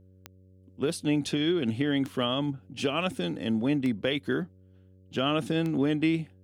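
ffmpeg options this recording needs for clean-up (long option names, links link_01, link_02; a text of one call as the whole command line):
ffmpeg -i in.wav -af "adeclick=threshold=4,bandreject=frequency=93.6:width_type=h:width=4,bandreject=frequency=187.2:width_type=h:width=4,bandreject=frequency=280.8:width_type=h:width=4,bandreject=frequency=374.4:width_type=h:width=4,bandreject=frequency=468:width_type=h:width=4,bandreject=frequency=561.6:width_type=h:width=4" out.wav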